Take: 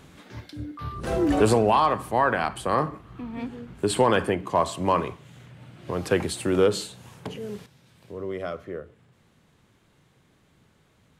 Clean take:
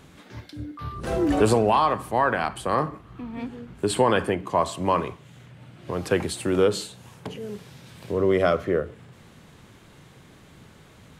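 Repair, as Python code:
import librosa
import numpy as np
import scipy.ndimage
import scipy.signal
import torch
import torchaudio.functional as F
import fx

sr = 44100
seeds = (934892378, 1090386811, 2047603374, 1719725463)

y = fx.fix_declip(x, sr, threshold_db=-9.5)
y = fx.gain(y, sr, db=fx.steps((0.0, 0.0), (7.66, 11.5)))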